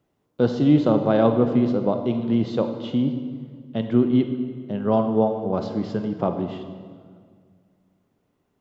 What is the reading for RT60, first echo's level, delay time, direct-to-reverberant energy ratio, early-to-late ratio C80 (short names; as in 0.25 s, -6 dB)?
1.9 s, none, none, 7.0 dB, 9.5 dB